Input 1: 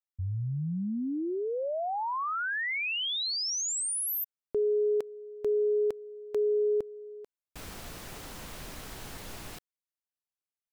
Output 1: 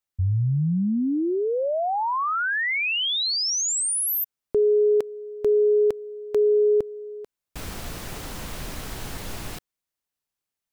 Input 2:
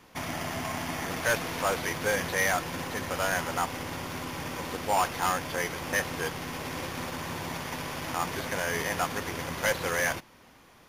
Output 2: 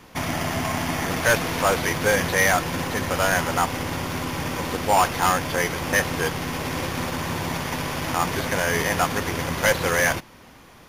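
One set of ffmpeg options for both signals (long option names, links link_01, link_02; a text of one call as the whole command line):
ffmpeg -i in.wav -af "lowshelf=frequency=210:gain=4,volume=7dB" out.wav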